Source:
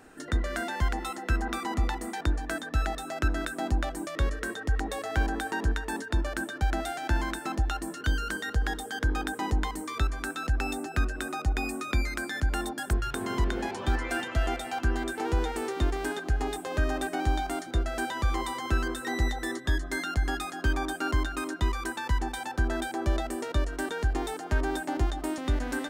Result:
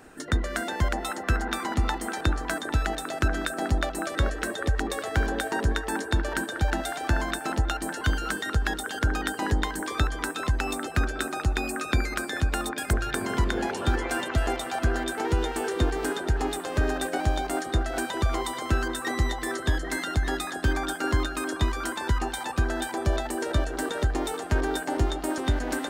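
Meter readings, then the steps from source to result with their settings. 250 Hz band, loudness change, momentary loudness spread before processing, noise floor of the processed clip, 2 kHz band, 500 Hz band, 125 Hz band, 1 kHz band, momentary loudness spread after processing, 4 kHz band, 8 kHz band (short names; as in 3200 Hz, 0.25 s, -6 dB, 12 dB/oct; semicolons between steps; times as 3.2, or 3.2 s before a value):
+2.5 dB, +2.5 dB, 3 LU, -36 dBFS, +3.0 dB, +4.0 dB, +3.0 dB, +2.5 dB, 2 LU, +4.5 dB, +5.0 dB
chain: delay with a stepping band-pass 0.399 s, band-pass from 500 Hz, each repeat 1.4 oct, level -1.5 dB; harmonic-percussive split percussive +6 dB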